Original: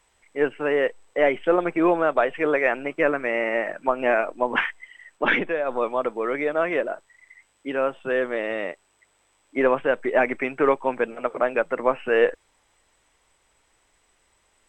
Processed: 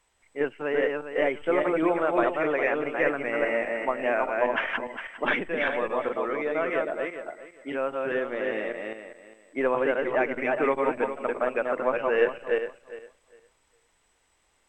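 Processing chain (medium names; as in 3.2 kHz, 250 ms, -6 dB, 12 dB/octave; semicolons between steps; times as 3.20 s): backward echo that repeats 203 ms, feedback 42%, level -2 dB; trim -5.5 dB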